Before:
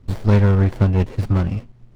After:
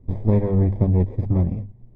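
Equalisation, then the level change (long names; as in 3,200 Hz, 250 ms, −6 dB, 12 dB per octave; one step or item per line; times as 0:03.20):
moving average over 31 samples
mains-hum notches 50/100/150/200 Hz
0.0 dB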